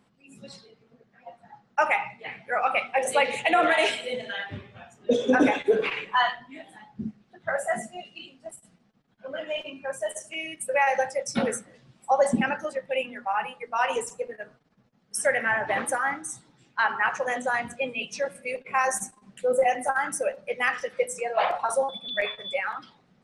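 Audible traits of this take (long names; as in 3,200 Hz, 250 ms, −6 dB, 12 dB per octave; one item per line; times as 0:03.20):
background noise floor −65 dBFS
spectral slope −2.5 dB per octave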